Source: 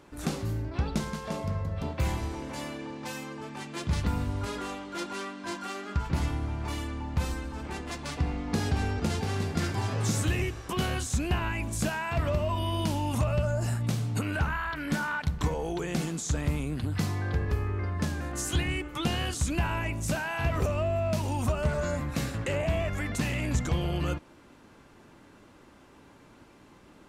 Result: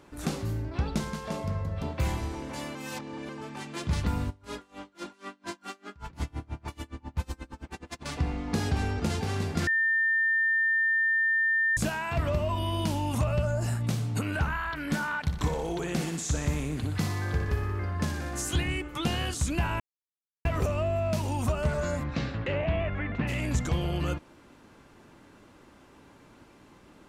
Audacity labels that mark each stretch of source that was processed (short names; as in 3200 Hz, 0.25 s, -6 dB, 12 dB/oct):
2.750000	3.290000	reverse
4.290000	8.040000	dB-linear tremolo 3.3 Hz -> 11 Hz, depth 29 dB
9.670000	11.770000	bleep 1800 Hz -22 dBFS
15.210000	18.420000	thinning echo 60 ms, feedback 73%, level -8 dB
19.800000	20.450000	mute
22.030000	23.270000	LPF 5400 Hz -> 2500 Hz 24 dB/oct